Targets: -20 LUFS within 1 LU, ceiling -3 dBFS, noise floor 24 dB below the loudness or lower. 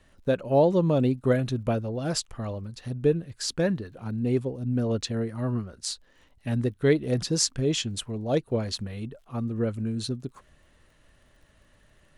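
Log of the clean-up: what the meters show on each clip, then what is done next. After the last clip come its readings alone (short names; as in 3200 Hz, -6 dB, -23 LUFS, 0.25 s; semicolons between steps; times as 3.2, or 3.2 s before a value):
ticks 33/s; loudness -27.5 LUFS; peak -7.5 dBFS; loudness target -20.0 LUFS
-> de-click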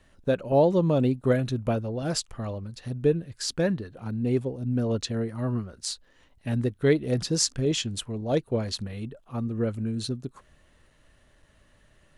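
ticks 0/s; loudness -27.5 LUFS; peak -7.5 dBFS; loudness target -20.0 LUFS
-> gain +7.5 dB; limiter -3 dBFS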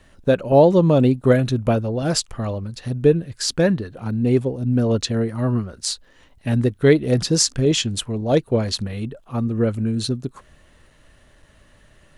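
loudness -20.0 LUFS; peak -3.0 dBFS; noise floor -54 dBFS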